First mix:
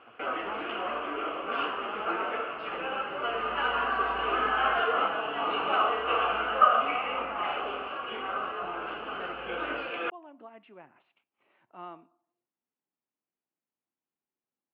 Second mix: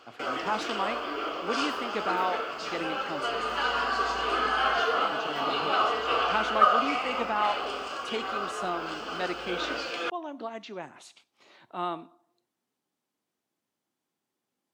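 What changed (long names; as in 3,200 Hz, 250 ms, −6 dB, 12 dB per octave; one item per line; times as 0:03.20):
speech +11.0 dB
master: remove elliptic low-pass filter 2,800 Hz, stop band 80 dB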